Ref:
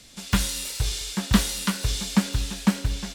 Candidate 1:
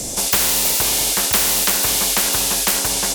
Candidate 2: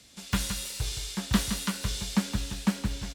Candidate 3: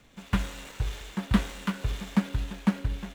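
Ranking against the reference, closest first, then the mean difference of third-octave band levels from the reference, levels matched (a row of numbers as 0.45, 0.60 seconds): 2, 3, 1; 1.5, 5.5, 8.0 decibels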